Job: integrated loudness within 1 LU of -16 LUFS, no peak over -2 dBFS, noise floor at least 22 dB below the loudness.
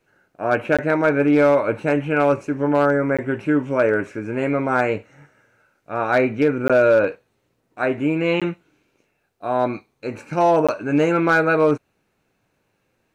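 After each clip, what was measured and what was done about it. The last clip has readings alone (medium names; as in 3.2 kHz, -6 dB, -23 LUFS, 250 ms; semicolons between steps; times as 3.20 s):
clipped samples 0.7%; clipping level -9.0 dBFS; dropouts 5; longest dropout 16 ms; loudness -19.5 LUFS; peak level -9.0 dBFS; loudness target -16.0 LUFS
-> clip repair -9 dBFS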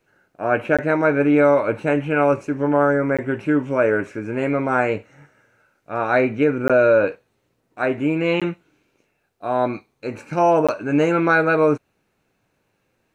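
clipped samples 0.0%; dropouts 5; longest dropout 16 ms
-> interpolate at 0.77/3.17/6.68/8.40/10.67 s, 16 ms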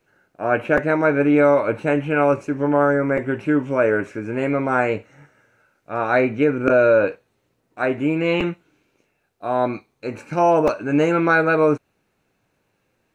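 dropouts 0; loudness -19.5 LUFS; peak level -2.0 dBFS; loudness target -16.0 LUFS
-> trim +3.5 dB; peak limiter -2 dBFS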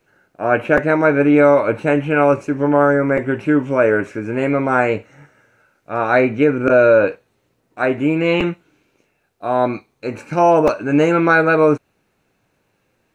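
loudness -16.0 LUFS; peak level -2.0 dBFS; noise floor -66 dBFS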